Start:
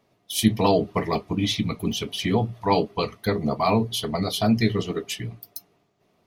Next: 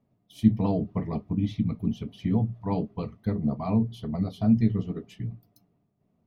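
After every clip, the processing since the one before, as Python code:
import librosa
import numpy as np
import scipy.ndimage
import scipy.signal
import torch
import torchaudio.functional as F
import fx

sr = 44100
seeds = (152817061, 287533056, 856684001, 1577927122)

y = fx.curve_eq(x, sr, hz=(250.0, 360.0, 560.0, 9200.0), db=(0, -11, -10, -27))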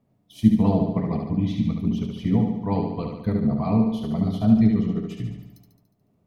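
y = fx.echo_feedback(x, sr, ms=72, feedback_pct=59, wet_db=-4.5)
y = y * librosa.db_to_amplitude(3.0)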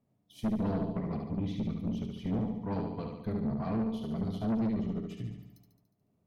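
y = fx.tube_stage(x, sr, drive_db=20.0, bias=0.45)
y = y * librosa.db_to_amplitude(-6.5)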